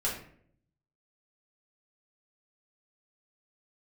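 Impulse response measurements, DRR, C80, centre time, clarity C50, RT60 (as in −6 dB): −6.5 dB, 9.0 dB, 35 ms, 5.0 dB, 0.60 s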